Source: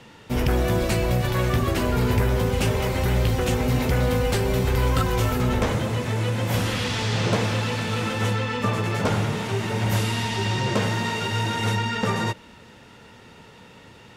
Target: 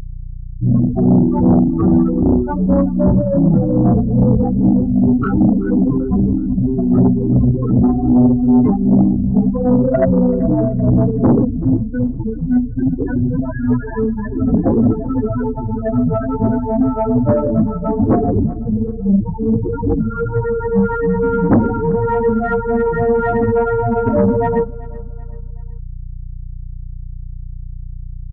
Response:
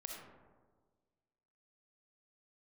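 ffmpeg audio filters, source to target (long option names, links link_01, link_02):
-filter_complex "[0:a]highpass=290,afftfilt=real='re*gte(hypot(re,im),0.126)':imag='im*gte(hypot(re,im),0.126)':win_size=1024:overlap=0.75,highshelf=frequency=5000:gain=-12,acrossover=split=1400[link_01][link_02];[link_01]acontrast=56[link_03];[link_03][link_02]amix=inputs=2:normalize=0,acrossover=split=1100[link_04][link_05];[link_04]aeval=exprs='val(0)*(1-0.7/2+0.7/2*cos(2*PI*5.1*n/s))':channel_layout=same[link_06];[link_05]aeval=exprs='val(0)*(1-0.7/2-0.7/2*cos(2*PI*5.1*n/s))':channel_layout=same[link_07];[link_06][link_07]amix=inputs=2:normalize=0,aeval=exprs='val(0)+0.01*(sin(2*PI*60*n/s)+sin(2*PI*2*60*n/s)/2+sin(2*PI*3*60*n/s)/3+sin(2*PI*4*60*n/s)/4+sin(2*PI*5*60*n/s)/5)':channel_layout=same,aeval=exprs='0.355*(cos(1*acos(clip(val(0)/0.355,-1,1)))-cos(1*PI/2))+0.00891*(cos(2*acos(clip(val(0)/0.355,-1,1)))-cos(2*PI/2))+0.126*(cos(5*acos(clip(val(0)/0.355,-1,1)))-cos(5*PI/2))+0.00282*(cos(8*acos(clip(val(0)/0.355,-1,1)))-cos(8*PI/2))':channel_layout=same,aecho=1:1:191|382|573:0.0944|0.0397|0.0167,asetrate=22050,aresample=44100,volume=5.5dB"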